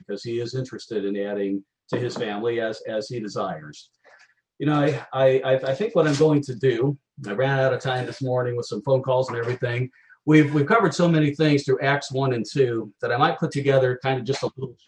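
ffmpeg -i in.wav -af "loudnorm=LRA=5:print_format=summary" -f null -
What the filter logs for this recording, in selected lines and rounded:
Input Integrated:    -23.1 LUFS
Input True Peak:      -5.1 dBTP
Input LRA:             7.1 LU
Input Threshold:     -33.3 LUFS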